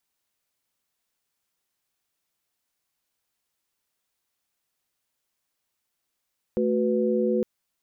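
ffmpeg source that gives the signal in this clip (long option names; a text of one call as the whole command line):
ffmpeg -f lavfi -i "aevalsrc='0.0562*(sin(2*PI*220*t)+sin(2*PI*369.99*t)+sin(2*PI*493.88*t))':duration=0.86:sample_rate=44100" out.wav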